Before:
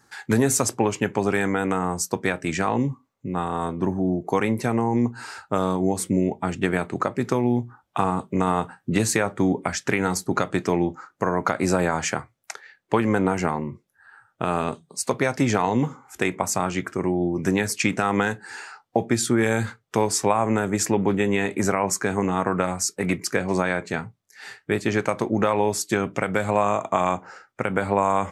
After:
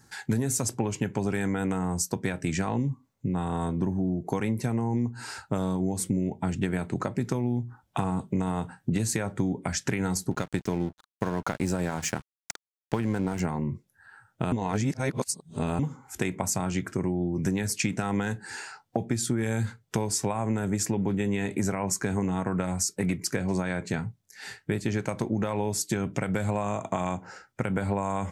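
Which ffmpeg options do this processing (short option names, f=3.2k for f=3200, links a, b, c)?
-filter_complex "[0:a]asettb=1/sr,asplit=3[a][b][c];[a]atrim=end=10.314[d];[b]atrim=start=10.31:end=13.4,asetpts=PTS-STARTPTS,afade=t=in:d=0.004:c=qsin,afade=t=out:st=3.086:d=0.004:c=qsin,aeval=exprs='sgn(val(0))*max(abs(val(0))-0.0178,0)':c=same[e];[c]atrim=start=13.396[f];[d][e]acrossfade=d=0.004:c1=hsin:c2=qsin[g];[g][f]acrossfade=d=0.004:c1=qsin:c2=hsin,asplit=3[h][i][j];[h]atrim=end=14.522[k];[i]atrim=start=14.518:end=15.792,asetpts=PTS-STARTPTS,areverse[l];[j]atrim=start=15.788[m];[k][l]acrossfade=d=0.004:c1=hsin:c2=hsin[n];[n][m]acrossfade=d=0.004:c1=hsin:c2=hsin,bass=f=250:g=10,treble=f=4k:g=5,bandreject=f=1.2k:w=9.2,acompressor=threshold=-23dB:ratio=4,volume=-2dB"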